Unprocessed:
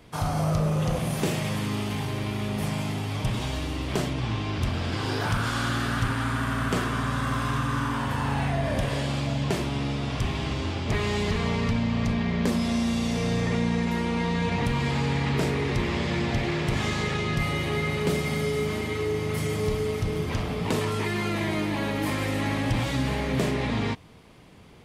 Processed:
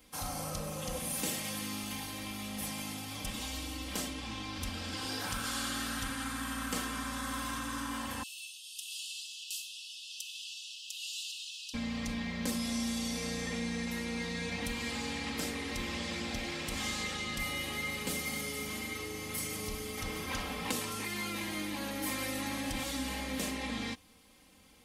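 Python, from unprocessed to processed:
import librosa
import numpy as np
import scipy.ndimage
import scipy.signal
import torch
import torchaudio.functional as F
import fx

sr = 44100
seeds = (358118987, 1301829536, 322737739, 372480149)

y = fx.brickwall_highpass(x, sr, low_hz=2500.0, at=(8.23, 11.74))
y = fx.peak_eq(y, sr, hz=1300.0, db=6.5, octaves=2.6, at=(19.97, 20.71))
y = librosa.effects.preemphasis(y, coef=0.8, zi=[0.0])
y = y + 0.84 * np.pad(y, (int(3.8 * sr / 1000.0), 0))[:len(y)]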